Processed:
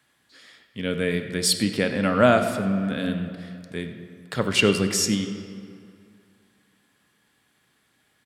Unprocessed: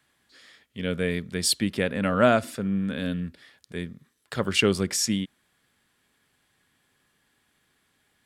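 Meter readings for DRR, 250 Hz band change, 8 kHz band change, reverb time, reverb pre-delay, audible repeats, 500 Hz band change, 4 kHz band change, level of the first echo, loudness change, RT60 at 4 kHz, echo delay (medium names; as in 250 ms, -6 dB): 6.5 dB, +2.5 dB, +2.0 dB, 2.4 s, 3 ms, 1, +3.0 dB, +2.5 dB, -18.0 dB, +2.5 dB, 1.5 s, 94 ms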